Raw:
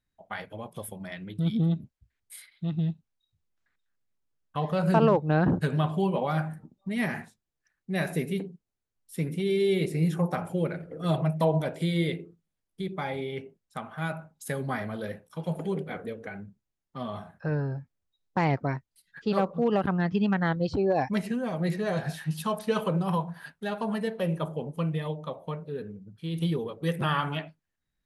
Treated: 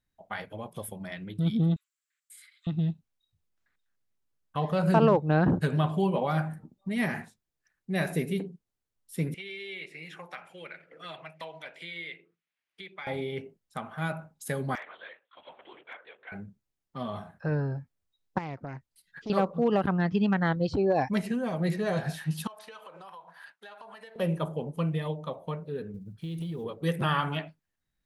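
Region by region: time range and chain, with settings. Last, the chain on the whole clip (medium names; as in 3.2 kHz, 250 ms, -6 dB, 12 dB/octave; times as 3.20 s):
1.76–2.67 s: steep high-pass 1.1 kHz 72 dB/octave + peaking EQ 7.5 kHz +12 dB 0.27 oct + compression 5:1, threshold -48 dBFS
9.34–13.07 s: band-pass filter 2.3 kHz, Q 1.8 + three bands compressed up and down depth 70%
14.75–16.32 s: LPC vocoder at 8 kHz whisper + high-pass 1.3 kHz + hard clipper -33.5 dBFS
18.38–19.30 s: compression 3:1, threshold -37 dBFS + loudspeaker Doppler distortion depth 0.24 ms
22.47–24.16 s: high-pass 820 Hz + treble shelf 6.9 kHz -10 dB + compression 10:1, threshold -43 dBFS
25.94–26.64 s: block-companded coder 7-bit + bass shelf 190 Hz +6.5 dB + compression 16:1, threshold -31 dBFS
whole clip: none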